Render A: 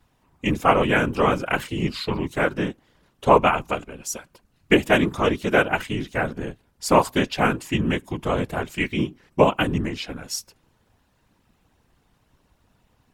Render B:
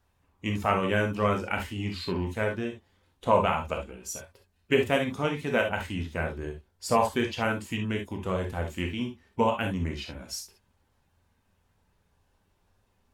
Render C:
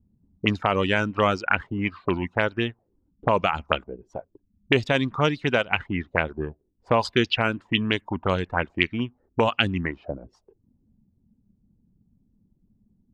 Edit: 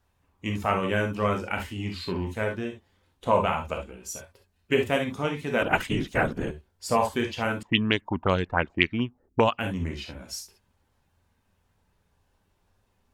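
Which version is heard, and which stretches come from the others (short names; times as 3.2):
B
5.62–6.51 from A
7.63–9.59 from C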